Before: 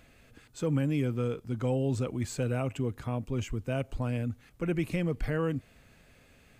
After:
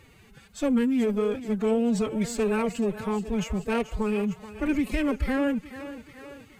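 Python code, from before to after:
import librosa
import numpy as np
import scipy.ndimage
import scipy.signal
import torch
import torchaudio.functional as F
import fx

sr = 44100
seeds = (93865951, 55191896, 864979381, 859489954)

y = fx.cheby_harmonics(x, sr, harmonics=(4,), levels_db=(-22,), full_scale_db=-18.5)
y = fx.echo_thinned(y, sr, ms=431, feedback_pct=61, hz=260.0, wet_db=-11.5)
y = fx.pitch_keep_formants(y, sr, semitones=9.5)
y = y * 10.0 ** (5.0 / 20.0)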